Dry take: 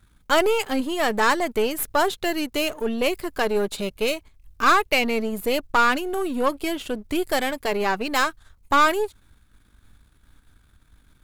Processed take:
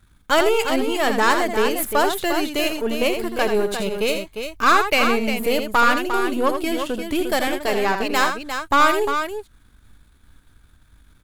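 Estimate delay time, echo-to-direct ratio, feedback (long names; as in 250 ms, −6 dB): 81 ms, −4.5 dB, repeats not evenly spaced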